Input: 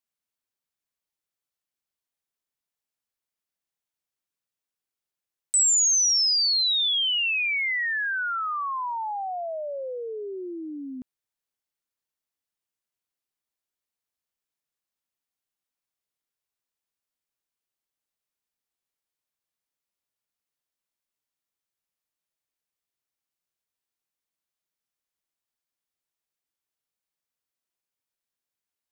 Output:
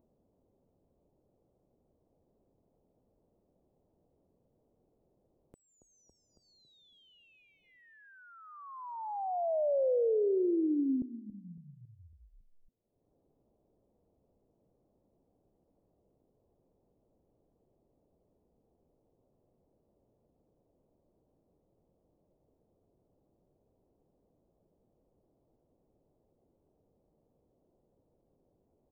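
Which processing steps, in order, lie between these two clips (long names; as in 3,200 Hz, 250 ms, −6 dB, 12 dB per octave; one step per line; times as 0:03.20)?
inverse Chebyshev low-pass filter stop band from 2,000 Hz, stop band 60 dB
echo with shifted repeats 277 ms, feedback 60%, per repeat −45 Hz, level −16 dB
upward compression, threshold −58 dBFS
level +5.5 dB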